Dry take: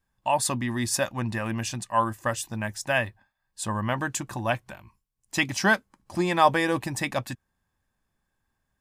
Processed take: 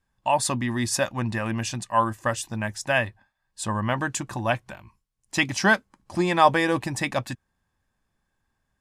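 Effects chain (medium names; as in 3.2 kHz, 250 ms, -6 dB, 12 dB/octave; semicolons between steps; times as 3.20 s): Bessel low-pass 10 kHz, order 2; trim +2 dB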